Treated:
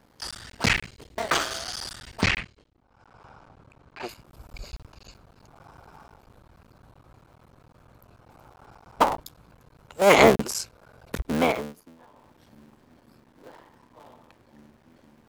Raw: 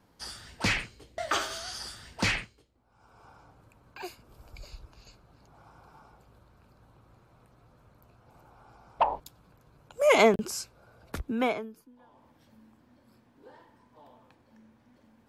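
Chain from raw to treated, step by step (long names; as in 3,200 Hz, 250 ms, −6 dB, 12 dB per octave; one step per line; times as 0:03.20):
sub-harmonics by changed cycles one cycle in 3, muted
0:02.22–0:04.09: high-frequency loss of the air 74 metres
level +6.5 dB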